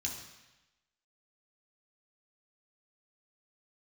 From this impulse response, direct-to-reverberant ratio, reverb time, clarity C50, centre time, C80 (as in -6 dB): -2.5 dB, 1.0 s, 5.5 dB, 36 ms, 7.5 dB